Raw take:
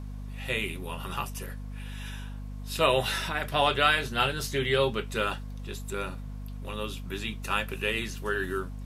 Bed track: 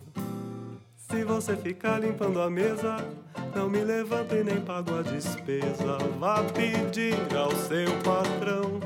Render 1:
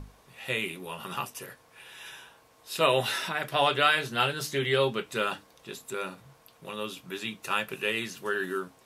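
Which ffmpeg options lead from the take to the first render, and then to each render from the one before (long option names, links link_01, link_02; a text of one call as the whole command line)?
ffmpeg -i in.wav -af "bandreject=frequency=50:width_type=h:width=6,bandreject=frequency=100:width_type=h:width=6,bandreject=frequency=150:width_type=h:width=6,bandreject=frequency=200:width_type=h:width=6,bandreject=frequency=250:width_type=h:width=6,bandreject=frequency=300:width_type=h:width=6" out.wav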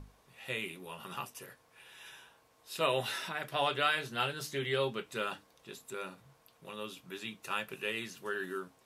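ffmpeg -i in.wav -af "volume=-7dB" out.wav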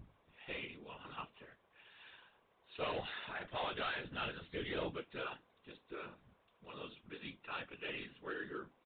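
ffmpeg -i in.wav -af "aresample=8000,asoftclip=type=hard:threshold=-28.5dB,aresample=44100,afftfilt=real='hypot(re,im)*cos(2*PI*random(0))':imag='hypot(re,im)*sin(2*PI*random(1))':win_size=512:overlap=0.75" out.wav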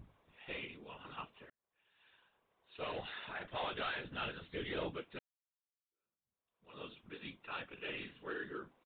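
ffmpeg -i in.wav -filter_complex "[0:a]asplit=3[link_01][link_02][link_03];[link_01]afade=type=out:start_time=7.75:duration=0.02[link_04];[link_02]asplit=2[link_05][link_06];[link_06]adelay=47,volume=-9dB[link_07];[link_05][link_07]amix=inputs=2:normalize=0,afade=type=in:start_time=7.75:duration=0.02,afade=type=out:start_time=8.43:duration=0.02[link_08];[link_03]afade=type=in:start_time=8.43:duration=0.02[link_09];[link_04][link_08][link_09]amix=inputs=3:normalize=0,asplit=3[link_10][link_11][link_12];[link_10]atrim=end=1.5,asetpts=PTS-STARTPTS,afade=type=out:start_time=1.496:duration=0.004:curve=hsin[link_13];[link_11]atrim=start=1.5:end=5.19,asetpts=PTS-STARTPTS,afade=type=in:duration=1.9,afade=type=out:start_time=3.686:duration=0.004:curve=hsin[link_14];[link_12]atrim=start=5.19,asetpts=PTS-STARTPTS,afade=type=in:duration=1.62:curve=exp[link_15];[link_13][link_14][link_15]concat=n=3:v=0:a=1" out.wav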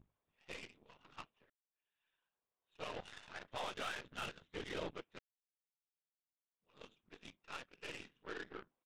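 ffmpeg -i in.wav -af "aeval=exprs='0.0447*(cos(1*acos(clip(val(0)/0.0447,-1,1)))-cos(1*PI/2))+0.00251*(cos(6*acos(clip(val(0)/0.0447,-1,1)))-cos(6*PI/2))+0.00562*(cos(7*acos(clip(val(0)/0.0447,-1,1)))-cos(7*PI/2))':channel_layout=same,asoftclip=type=tanh:threshold=-32.5dB" out.wav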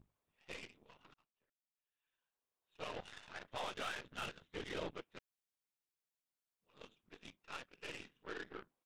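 ffmpeg -i in.wav -filter_complex "[0:a]asplit=2[link_01][link_02];[link_01]atrim=end=1.14,asetpts=PTS-STARTPTS,afade=type=out:start_time=1.136:duration=0.004:curve=hsin[link_03];[link_02]atrim=start=1.14,asetpts=PTS-STARTPTS,afade=type=in:duration=1.68[link_04];[link_03][link_04]concat=n=2:v=0:a=1" out.wav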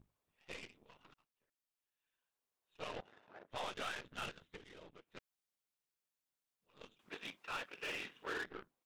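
ffmpeg -i in.wav -filter_complex "[0:a]asplit=3[link_01][link_02][link_03];[link_01]afade=type=out:start_time=3:duration=0.02[link_04];[link_02]bandpass=frequency=440:width_type=q:width=0.91,afade=type=in:start_time=3:duration=0.02,afade=type=out:start_time=3.49:duration=0.02[link_05];[link_03]afade=type=in:start_time=3.49:duration=0.02[link_06];[link_04][link_05][link_06]amix=inputs=3:normalize=0,asplit=3[link_07][link_08][link_09];[link_07]afade=type=out:start_time=4.55:duration=0.02[link_10];[link_08]acompressor=threshold=-58dB:ratio=3:attack=3.2:release=140:knee=1:detection=peak,afade=type=in:start_time=4.55:duration=0.02,afade=type=out:start_time=5.12:duration=0.02[link_11];[link_09]afade=type=in:start_time=5.12:duration=0.02[link_12];[link_10][link_11][link_12]amix=inputs=3:normalize=0,asettb=1/sr,asplit=3[link_13][link_14][link_15];[link_13]atrim=end=6.994[link_16];[link_14]atrim=start=6.99:end=8.46,asetpts=PTS-STARTPTS,afade=type=in:duration=0.004:curve=qsin,afade=type=out:start_time=1.466:duration=0.004:curve=qsin,asplit=2[link_17][link_18];[link_18]highpass=frequency=720:poles=1,volume=23dB,asoftclip=type=tanh:threshold=-33dB[link_19];[link_17][link_19]amix=inputs=2:normalize=0,lowpass=frequency=3700:poles=1,volume=-6dB[link_20];[link_15]atrim=start=8.456[link_21];[link_16][link_20]acrossfade=duration=0.004:curve1=hsin:curve2=qsin[link_22];[link_22][link_21]acrossfade=duration=0.004:curve1=qsin:curve2=hsin" out.wav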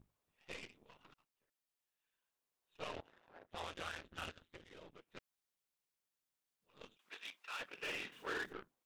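ffmpeg -i in.wav -filter_complex "[0:a]asplit=3[link_01][link_02][link_03];[link_01]afade=type=out:start_time=2.95:duration=0.02[link_04];[link_02]aeval=exprs='val(0)*sin(2*PI*83*n/s)':channel_layout=same,afade=type=in:start_time=2.95:duration=0.02,afade=type=out:start_time=4.7:duration=0.02[link_05];[link_03]afade=type=in:start_time=4.7:duration=0.02[link_06];[link_04][link_05][link_06]amix=inputs=3:normalize=0,asettb=1/sr,asplit=3[link_07][link_08][link_09];[link_07]atrim=end=6.974[link_10];[link_08]atrim=start=6.97:end=7.6,asetpts=PTS-STARTPTS,afade=type=in:duration=0.004:curve=qsin,afade=type=out:start_time=0.626:duration=0.004:curve=qsin,highpass=frequency=1500:poles=1[link_11];[link_09]atrim=start=7.596[link_12];[link_10][link_11]acrossfade=duration=0.004:curve1=hsin:curve2=qsin[link_13];[link_13][link_12]acrossfade=duration=0.004:curve1=qsin:curve2=hsin,asettb=1/sr,asplit=3[link_14][link_15][link_16];[link_14]atrim=end=8.124[link_17];[link_15]atrim=start=8.12:end=8.53,asetpts=PTS-STARTPTS,afade=type=in:duration=0.004:curve=qsin,afade=type=out:start_time=0.406:duration=0.004:curve=qsin,aeval=exprs='val(0)+0.5*0.00112*sgn(val(0))':channel_layout=same[link_18];[link_16]atrim=start=8.526[link_19];[link_17][link_18]acrossfade=duration=0.004:curve1=hsin:curve2=qsin[link_20];[link_20][link_19]acrossfade=duration=0.004:curve1=qsin:curve2=hsin" out.wav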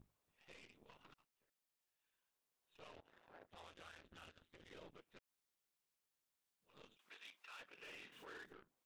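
ffmpeg -i in.wav -af "acompressor=threshold=-51dB:ratio=6,alimiter=level_in=23.5dB:limit=-24dB:level=0:latency=1:release=67,volume=-23.5dB" out.wav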